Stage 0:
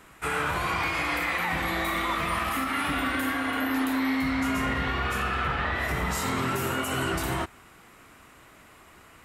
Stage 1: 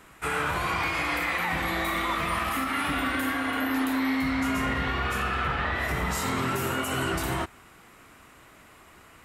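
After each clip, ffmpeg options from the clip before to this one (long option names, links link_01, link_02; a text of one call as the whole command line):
ffmpeg -i in.wav -af anull out.wav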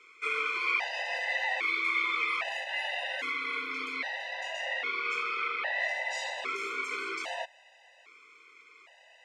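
ffmpeg -i in.wav -af "highpass=frequency=490:width=0.5412,highpass=frequency=490:width=1.3066,equalizer=frequency=990:width_type=q:width=4:gain=-8,equalizer=frequency=1500:width_type=q:width=4:gain=-8,equalizer=frequency=2300:width_type=q:width=4:gain=9,lowpass=frequency=6200:width=0.5412,lowpass=frequency=6200:width=1.3066,afftfilt=real='re*gt(sin(2*PI*0.62*pts/sr)*(1-2*mod(floor(b*sr/1024/510),2)),0)':imag='im*gt(sin(2*PI*0.62*pts/sr)*(1-2*mod(floor(b*sr/1024/510),2)),0)':win_size=1024:overlap=0.75" out.wav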